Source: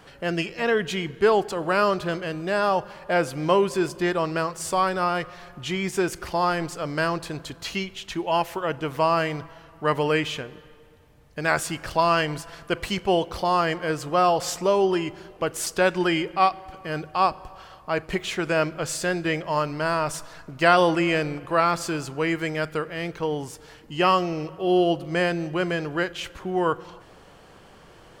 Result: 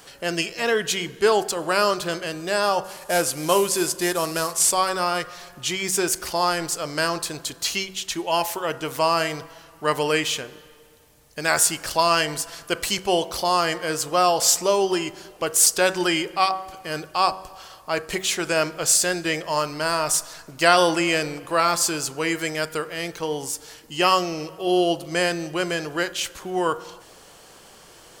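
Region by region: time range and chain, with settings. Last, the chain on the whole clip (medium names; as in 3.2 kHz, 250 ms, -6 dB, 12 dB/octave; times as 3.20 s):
2.84–4.72 s: CVSD coder 64 kbps + treble shelf 10 kHz +5 dB
whole clip: tone controls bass -6 dB, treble +14 dB; de-hum 94.6 Hz, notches 20; trim +1 dB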